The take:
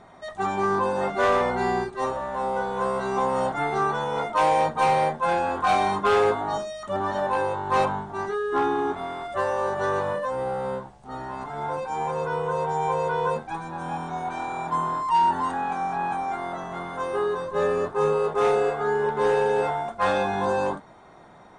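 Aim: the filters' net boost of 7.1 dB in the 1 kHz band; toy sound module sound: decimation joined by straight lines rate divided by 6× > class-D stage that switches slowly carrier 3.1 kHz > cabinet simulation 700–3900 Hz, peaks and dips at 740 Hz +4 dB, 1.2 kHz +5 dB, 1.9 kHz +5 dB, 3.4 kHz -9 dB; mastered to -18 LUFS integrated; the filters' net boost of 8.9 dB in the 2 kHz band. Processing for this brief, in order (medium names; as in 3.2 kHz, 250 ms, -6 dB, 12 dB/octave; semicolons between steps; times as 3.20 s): peaking EQ 1 kHz +5 dB; peaking EQ 2 kHz +6.5 dB; decimation joined by straight lines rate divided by 6×; class-D stage that switches slowly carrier 3.1 kHz; cabinet simulation 700–3900 Hz, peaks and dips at 740 Hz +4 dB, 1.2 kHz +5 dB, 1.9 kHz +5 dB, 3.4 kHz -9 dB; trim +4 dB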